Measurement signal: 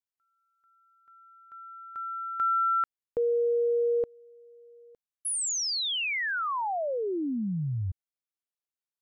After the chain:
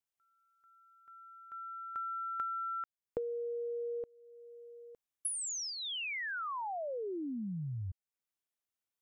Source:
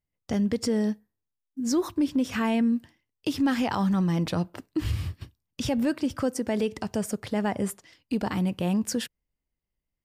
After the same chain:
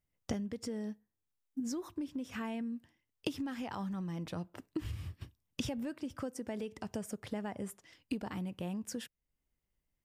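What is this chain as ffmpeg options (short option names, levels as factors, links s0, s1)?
-af "acompressor=threshold=0.0126:ratio=10:attack=43:release=802:knee=6:detection=peak,equalizer=f=4400:w=4.5:g=-4.5,volume=1.12"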